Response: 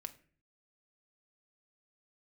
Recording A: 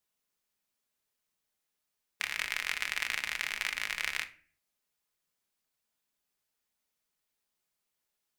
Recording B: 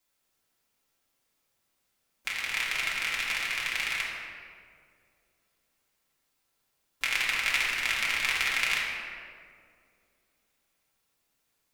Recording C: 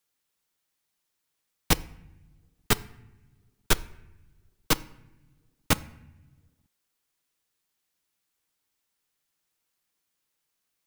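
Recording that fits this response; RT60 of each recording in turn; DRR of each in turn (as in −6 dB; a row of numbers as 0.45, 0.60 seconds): A; 0.45 s, 2.2 s, non-exponential decay; 7.5, −6.0, 13.5 decibels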